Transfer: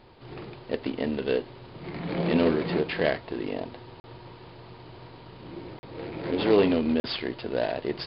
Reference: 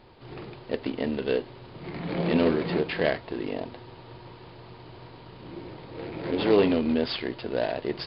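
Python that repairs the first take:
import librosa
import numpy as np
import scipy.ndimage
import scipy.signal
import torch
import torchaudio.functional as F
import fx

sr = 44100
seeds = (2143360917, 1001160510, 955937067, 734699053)

y = fx.fix_interpolate(x, sr, at_s=(4.0, 5.79, 7.0), length_ms=40.0)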